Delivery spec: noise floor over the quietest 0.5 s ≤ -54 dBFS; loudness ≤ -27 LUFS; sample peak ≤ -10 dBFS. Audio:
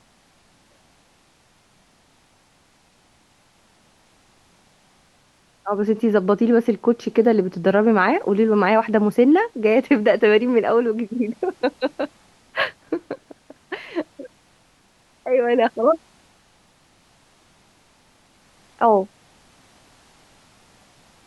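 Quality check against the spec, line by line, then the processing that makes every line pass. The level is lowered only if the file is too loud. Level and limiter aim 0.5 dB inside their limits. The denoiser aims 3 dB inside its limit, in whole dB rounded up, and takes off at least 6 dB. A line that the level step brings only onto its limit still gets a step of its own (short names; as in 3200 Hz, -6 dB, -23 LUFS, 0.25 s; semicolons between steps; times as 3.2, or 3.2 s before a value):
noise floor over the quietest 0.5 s -58 dBFS: OK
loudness -19.5 LUFS: fail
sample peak -5.0 dBFS: fail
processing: gain -8 dB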